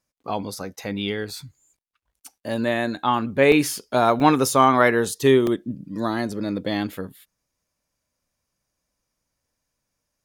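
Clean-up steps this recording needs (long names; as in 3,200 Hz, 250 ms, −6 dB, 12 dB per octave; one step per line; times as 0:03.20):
repair the gap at 0:01.60/0:02.29/0:03.52/0:04.20/0:05.47/0:06.32, 1.7 ms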